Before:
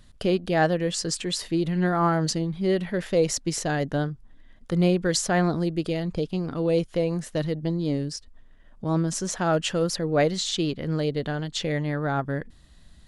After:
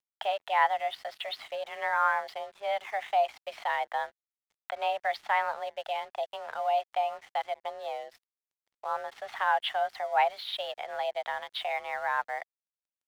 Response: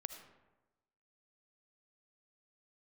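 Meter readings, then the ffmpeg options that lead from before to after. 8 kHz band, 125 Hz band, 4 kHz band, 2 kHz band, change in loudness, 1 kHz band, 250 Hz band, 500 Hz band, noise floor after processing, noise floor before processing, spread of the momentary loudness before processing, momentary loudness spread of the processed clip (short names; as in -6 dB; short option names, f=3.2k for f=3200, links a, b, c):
under -25 dB, under -40 dB, -6.5 dB, 0.0 dB, -6.0 dB, +3.5 dB, under -40 dB, -8.0 dB, under -85 dBFS, -52 dBFS, 6 LU, 11 LU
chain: -filter_complex "[0:a]highpass=f=460:t=q:w=0.5412,highpass=f=460:t=q:w=1.307,lowpass=f=3.3k:t=q:w=0.5176,lowpass=f=3.3k:t=q:w=0.7071,lowpass=f=3.3k:t=q:w=1.932,afreqshift=210,asplit=2[a][b];[b]acompressor=threshold=-42dB:ratio=5,volume=2dB[c];[a][c]amix=inputs=2:normalize=0,aeval=exprs='sgn(val(0))*max(abs(val(0))-0.00335,0)':c=same,volume=-2.5dB"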